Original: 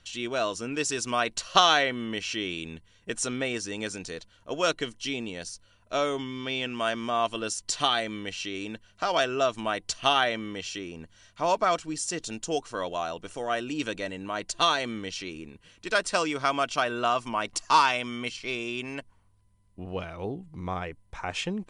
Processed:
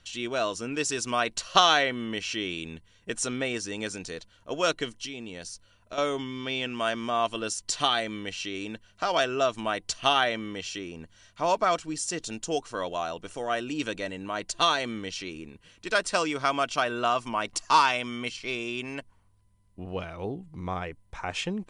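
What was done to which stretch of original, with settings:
5.05–5.98 compressor 4:1, threshold -35 dBFS

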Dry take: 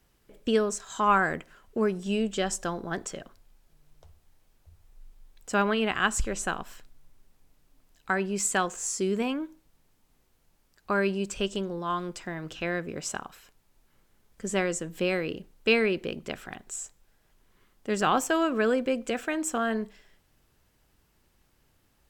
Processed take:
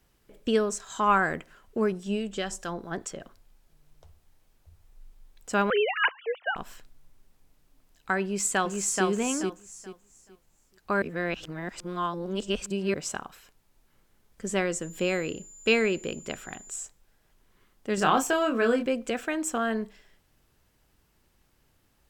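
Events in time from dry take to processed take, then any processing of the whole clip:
1.92–3.21 harmonic tremolo 4.8 Hz, depth 50%, crossover 1300 Hz
5.7–6.56 sine-wave speech
8.22–9.06 echo throw 0.43 s, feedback 25%, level -2.5 dB
11.02–12.94 reverse
14.81–16.72 whine 7100 Hz -47 dBFS
17.95–18.86 doubler 26 ms -5 dB

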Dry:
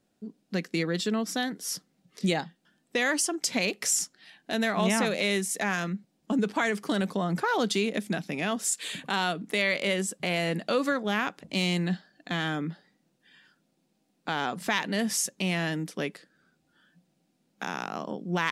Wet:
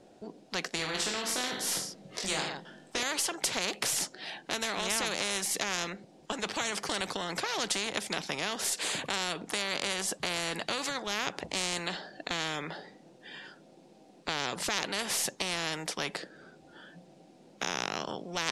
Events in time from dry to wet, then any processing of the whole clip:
0.77–3.03 reverse bouncing-ball echo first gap 20 ms, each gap 1.25×, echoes 5
whole clip: LPF 7900 Hz 12 dB/oct; band shelf 550 Hz +8.5 dB; spectral compressor 4:1; gain -6.5 dB

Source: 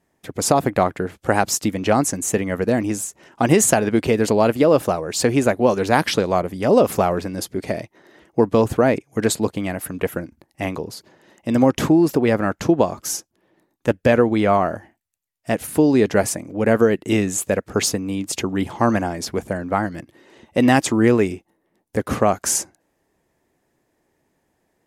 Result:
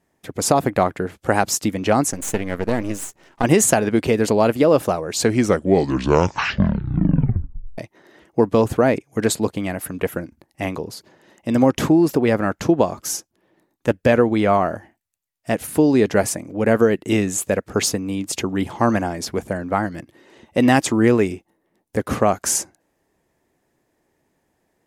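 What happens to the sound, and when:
2.11–3.44 half-wave gain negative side -12 dB
5.1 tape stop 2.68 s

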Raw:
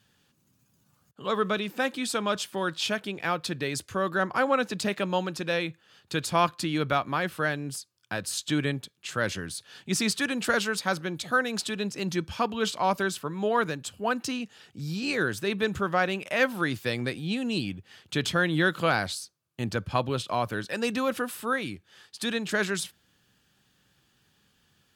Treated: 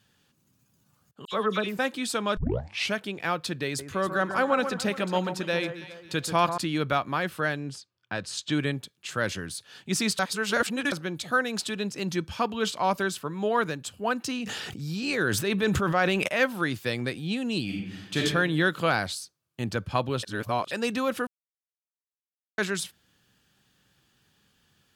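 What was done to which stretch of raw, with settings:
1.25–1.79 dispersion lows, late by 74 ms, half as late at 2500 Hz
2.37 tape start 0.56 s
3.65–6.58 echo with dull and thin repeats by turns 0.137 s, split 1700 Hz, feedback 59%, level -8.5 dB
7.4–8.67 low-pass opened by the level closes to 2400 Hz, open at -23.5 dBFS
10.19–10.92 reverse
14.3–16.28 sustainer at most 22 dB/s
17.64–18.19 reverb throw, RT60 1 s, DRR -3 dB
20.23–20.71 reverse
21.27–22.58 mute

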